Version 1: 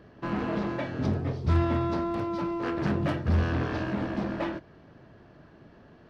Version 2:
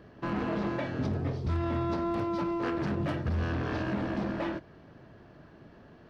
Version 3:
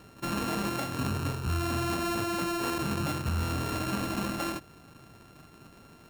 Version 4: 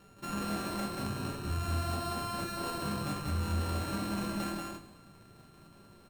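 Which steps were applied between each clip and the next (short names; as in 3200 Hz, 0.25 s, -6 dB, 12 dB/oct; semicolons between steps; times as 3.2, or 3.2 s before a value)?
limiter -23 dBFS, peak gain reduction 8.5 dB
sample sorter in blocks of 32 samples
feedback echo 0.186 s, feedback 16%, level -3 dB; shoebox room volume 160 m³, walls furnished, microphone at 1.2 m; gain -8.5 dB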